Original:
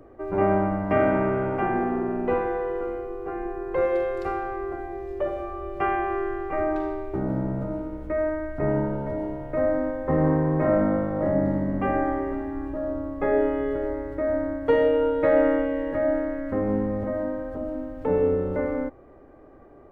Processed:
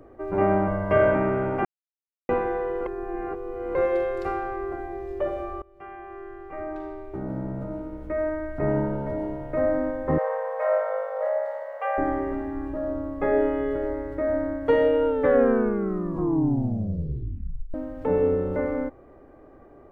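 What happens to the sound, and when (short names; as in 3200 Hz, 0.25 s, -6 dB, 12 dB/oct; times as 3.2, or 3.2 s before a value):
0.67–1.15 comb 1.9 ms, depth 67%
1.65–2.29 mute
2.86–3.75 reverse
5.62–8.69 fade in, from -24 dB
10.18–11.98 brick-wall FIR high-pass 440 Hz
15.06 tape stop 2.68 s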